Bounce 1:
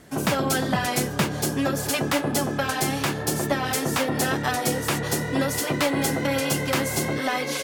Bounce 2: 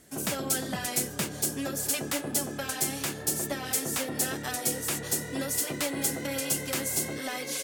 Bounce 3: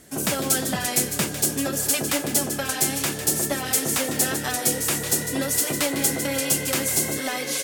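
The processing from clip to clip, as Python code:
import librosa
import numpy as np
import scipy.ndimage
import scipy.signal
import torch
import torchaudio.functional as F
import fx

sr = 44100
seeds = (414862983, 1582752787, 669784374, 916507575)

y1 = fx.graphic_eq_10(x, sr, hz=(125, 1000, 8000, 16000), db=(-4, -5, 6, 9))
y1 = y1 * librosa.db_to_amplitude(-8.0)
y2 = fx.echo_wet_highpass(y1, sr, ms=152, feedback_pct=34, hz=1800.0, wet_db=-9)
y2 = y2 * librosa.db_to_amplitude(6.5)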